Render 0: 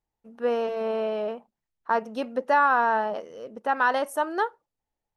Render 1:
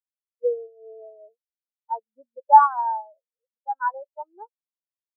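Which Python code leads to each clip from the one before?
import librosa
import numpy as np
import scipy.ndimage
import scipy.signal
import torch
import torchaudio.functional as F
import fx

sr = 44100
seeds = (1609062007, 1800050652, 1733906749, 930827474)

y = fx.peak_eq(x, sr, hz=120.0, db=-5.5, octaves=1.4)
y = fx.spectral_expand(y, sr, expansion=4.0)
y = y * 10.0 ** (7.5 / 20.0)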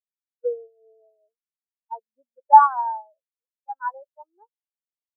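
y = fx.band_widen(x, sr, depth_pct=70)
y = y * 10.0 ** (-5.0 / 20.0)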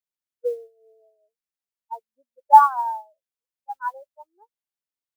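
y = fx.mod_noise(x, sr, seeds[0], snr_db=35)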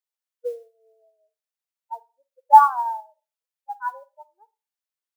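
y = scipy.signal.sosfilt(scipy.signal.butter(4, 500.0, 'highpass', fs=sr, output='sos'), x)
y = fx.rev_schroeder(y, sr, rt60_s=0.32, comb_ms=38, drr_db=18.0)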